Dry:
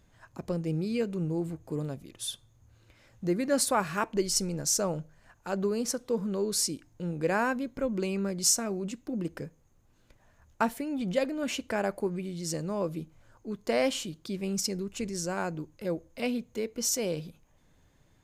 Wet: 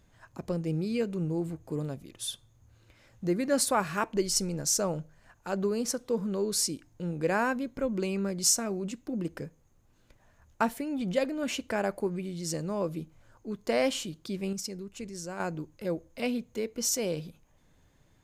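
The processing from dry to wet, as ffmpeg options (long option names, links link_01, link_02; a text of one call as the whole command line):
ffmpeg -i in.wav -filter_complex "[0:a]asplit=3[link_01][link_02][link_03];[link_01]atrim=end=14.532[link_04];[link_02]atrim=start=14.528:end=15.402,asetpts=PTS-STARTPTS,volume=-6dB[link_05];[link_03]atrim=start=15.398[link_06];[link_04][link_05]acrossfade=duration=0.004:curve1=hsin:curve2=hsin[link_07];[link_07][link_06]acrossfade=duration=0.004:curve1=hsin:curve2=hsin" out.wav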